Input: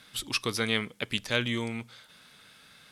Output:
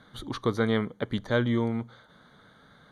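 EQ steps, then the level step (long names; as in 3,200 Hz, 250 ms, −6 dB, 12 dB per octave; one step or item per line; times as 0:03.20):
moving average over 17 samples
+6.5 dB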